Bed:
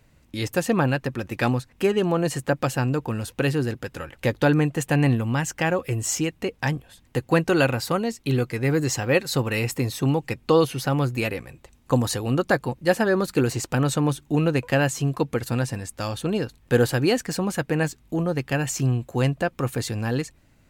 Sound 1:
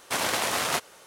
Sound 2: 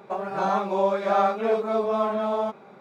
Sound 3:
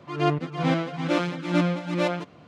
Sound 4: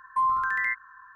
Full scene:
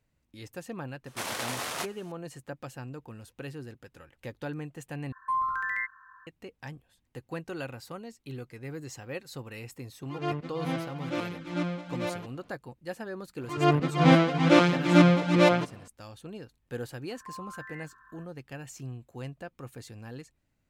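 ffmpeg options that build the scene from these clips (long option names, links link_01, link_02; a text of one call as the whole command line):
ffmpeg -i bed.wav -i cue0.wav -i cue1.wav -i cue2.wav -i cue3.wav -filter_complex "[4:a]asplit=2[link_01][link_02];[3:a]asplit=2[link_03][link_04];[0:a]volume=-17.5dB[link_05];[link_04]dynaudnorm=framelen=110:gausssize=7:maxgain=7dB[link_06];[link_02]acompressor=threshold=-35dB:ratio=6:attack=3.2:release=140:knee=1:detection=peak[link_07];[link_05]asplit=2[link_08][link_09];[link_08]atrim=end=5.124[link_10];[link_01]atrim=end=1.15,asetpts=PTS-STARTPTS,volume=-4.5dB[link_11];[link_09]atrim=start=6.266[link_12];[1:a]atrim=end=1.06,asetpts=PTS-STARTPTS,volume=-7.5dB,afade=type=in:duration=0.004:curve=hsin,afade=type=out:start_time=1.056:duration=0.004:curve=hsin,adelay=1060[link_13];[link_03]atrim=end=2.47,asetpts=PTS-STARTPTS,volume=-8.5dB,afade=type=in:duration=0.004:curve=hsin,afade=type=out:start_time=2.466:duration=0.004:curve=hsin,adelay=441882S[link_14];[link_06]atrim=end=2.47,asetpts=PTS-STARTPTS,volume=-1.5dB,afade=type=in:duration=0.004:curve=hsin,afade=type=out:start_time=2.466:duration=0.004:curve=hsin,adelay=13410[link_15];[link_07]atrim=end=1.15,asetpts=PTS-STARTPTS,volume=-7.5dB,afade=type=in:duration=0.004:curve=hsin,afade=type=out:start_time=1.146:duration=0.004:curve=hsin,adelay=17100[link_16];[link_10][link_11]acrossfade=duration=0.004:curve1=hsin:curve2=hsin[link_17];[link_17][link_12]acrossfade=duration=0.004:curve1=hsin:curve2=hsin[link_18];[link_18][link_13][link_14][link_15][link_16]amix=inputs=5:normalize=0" out.wav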